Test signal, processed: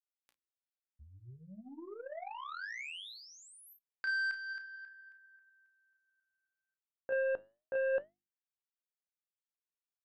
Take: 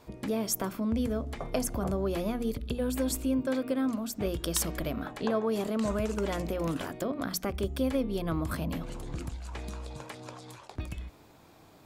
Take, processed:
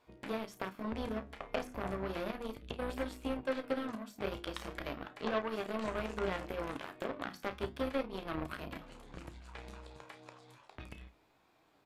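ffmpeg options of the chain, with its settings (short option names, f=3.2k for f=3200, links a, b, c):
-filter_complex "[0:a]bass=f=250:g=-4,treble=f=4k:g=-12,aecho=1:1:15|32|52:0.282|0.422|0.168,aeval=exprs='0.168*(cos(1*acos(clip(val(0)/0.168,-1,1)))-cos(1*PI/2))+0.00106*(cos(4*acos(clip(val(0)/0.168,-1,1)))-cos(4*PI/2))+0.00668*(cos(5*acos(clip(val(0)/0.168,-1,1)))-cos(5*PI/2))+0.0237*(cos(7*acos(clip(val(0)/0.168,-1,1)))-cos(7*PI/2))':c=same,tiltshelf=f=1.4k:g=-4,asplit=2[a][b];[b]acompressor=threshold=-43dB:ratio=6,volume=2.5dB[c];[a][c]amix=inputs=2:normalize=0,flanger=delay=2.7:depth=7.3:regen=84:speed=0.35:shape=sinusoidal,acrossover=split=3700[d][e];[e]acompressor=threshold=-54dB:ratio=4:attack=1:release=60[f];[d][f]amix=inputs=2:normalize=0,bandreject=f=50:t=h:w=6,bandreject=f=100:t=h:w=6,bandreject=f=150:t=h:w=6,bandreject=f=200:t=h:w=6,bandreject=f=250:t=h:w=6,bandreject=f=300:t=h:w=6,bandreject=f=350:t=h:w=6,aresample=32000,aresample=44100"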